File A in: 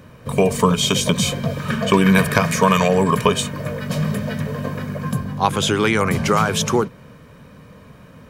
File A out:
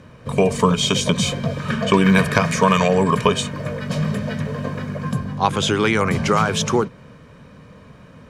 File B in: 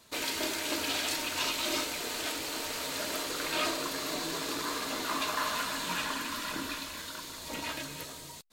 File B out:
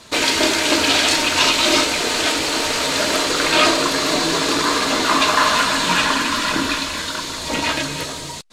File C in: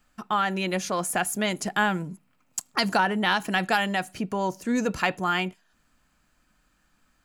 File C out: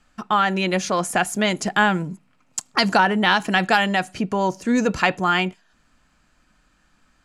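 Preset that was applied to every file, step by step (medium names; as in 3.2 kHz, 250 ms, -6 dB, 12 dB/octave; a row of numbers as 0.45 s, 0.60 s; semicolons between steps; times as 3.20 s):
low-pass 8 kHz 12 dB/octave; peak normalisation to -1.5 dBFS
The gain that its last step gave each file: -0.5 dB, +16.5 dB, +6.0 dB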